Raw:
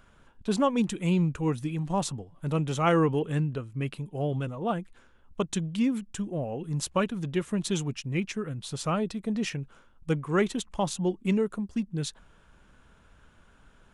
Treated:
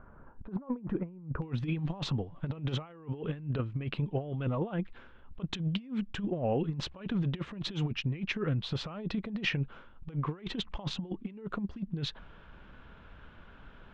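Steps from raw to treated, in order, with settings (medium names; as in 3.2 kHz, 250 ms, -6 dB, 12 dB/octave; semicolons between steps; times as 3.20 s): low-pass 1.4 kHz 24 dB/octave, from 1.42 s 3.7 kHz; compressor with a negative ratio -33 dBFS, ratio -0.5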